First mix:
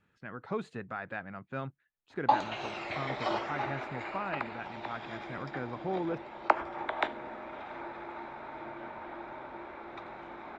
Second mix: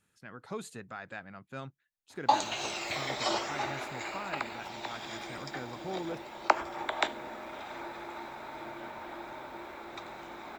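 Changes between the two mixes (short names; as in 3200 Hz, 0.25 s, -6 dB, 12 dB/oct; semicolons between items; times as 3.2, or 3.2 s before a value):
speech -4.5 dB; master: remove LPF 2400 Hz 12 dB/oct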